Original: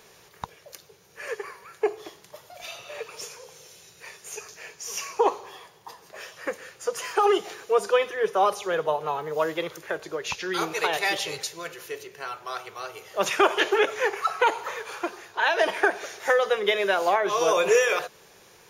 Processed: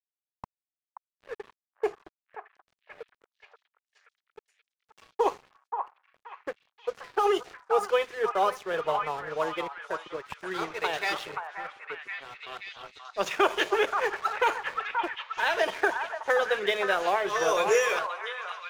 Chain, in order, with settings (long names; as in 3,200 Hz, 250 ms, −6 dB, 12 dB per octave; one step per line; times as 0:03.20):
low-pass that shuts in the quiet parts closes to 610 Hz, open at −18 dBFS
dead-zone distortion −39.5 dBFS
echo through a band-pass that steps 529 ms, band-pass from 1,100 Hz, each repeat 0.7 octaves, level −2.5 dB
level −3 dB